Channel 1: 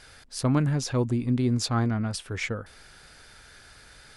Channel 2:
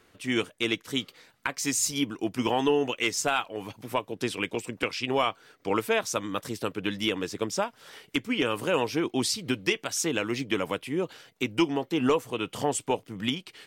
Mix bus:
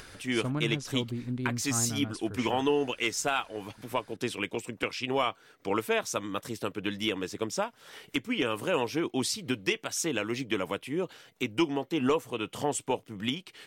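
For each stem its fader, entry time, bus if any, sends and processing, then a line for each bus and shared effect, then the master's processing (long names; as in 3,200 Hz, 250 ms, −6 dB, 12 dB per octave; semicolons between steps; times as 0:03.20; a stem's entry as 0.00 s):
−9.0 dB, 0.00 s, no send, no processing
−2.5 dB, 0.00 s, no send, no processing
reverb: not used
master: upward compression, threshold −39 dBFS; parametric band 4,700 Hz −2.5 dB 0.21 octaves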